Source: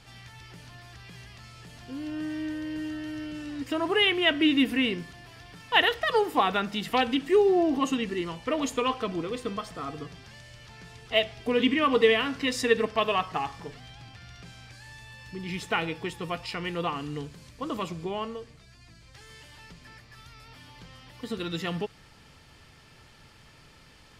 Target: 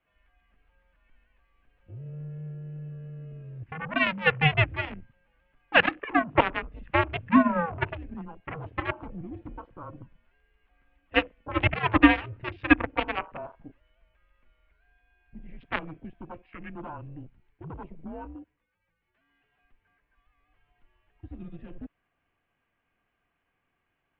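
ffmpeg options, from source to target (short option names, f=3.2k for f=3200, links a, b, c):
-af "aeval=exprs='0.447*(cos(1*acos(clip(val(0)/0.447,-1,1)))-cos(1*PI/2))+0.0891*(cos(7*acos(clip(val(0)/0.447,-1,1)))-cos(7*PI/2))+0.00251*(cos(8*acos(clip(val(0)/0.447,-1,1)))-cos(8*PI/2))':c=same,afwtdn=0.00708,highpass=f=170:t=q:w=0.5412,highpass=f=170:t=q:w=1.307,lowpass=f=2.9k:t=q:w=0.5176,lowpass=f=2.9k:t=q:w=0.7071,lowpass=f=2.9k:t=q:w=1.932,afreqshift=-160,volume=4.5dB"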